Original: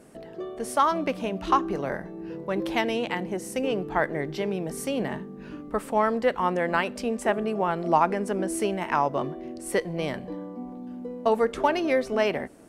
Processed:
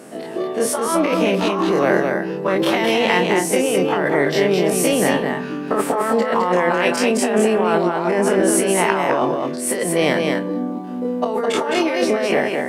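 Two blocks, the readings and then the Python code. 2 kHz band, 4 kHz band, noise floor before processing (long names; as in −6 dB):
+10.0 dB, +12.0 dB, −42 dBFS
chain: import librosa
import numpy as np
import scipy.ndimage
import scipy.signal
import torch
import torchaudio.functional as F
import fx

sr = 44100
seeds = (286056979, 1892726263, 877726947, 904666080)

y = fx.spec_dilate(x, sr, span_ms=60)
y = scipy.signal.sosfilt(scipy.signal.butter(2, 210.0, 'highpass', fs=sr, output='sos'), y)
y = fx.over_compress(y, sr, threshold_db=-26.0, ratio=-1.0)
y = fx.doubler(y, sr, ms=28.0, db=-14)
y = y + 10.0 ** (-4.0 / 20.0) * np.pad(y, (int(211 * sr / 1000.0), 0))[:len(y)]
y = F.gain(torch.from_numpy(y), 7.0).numpy()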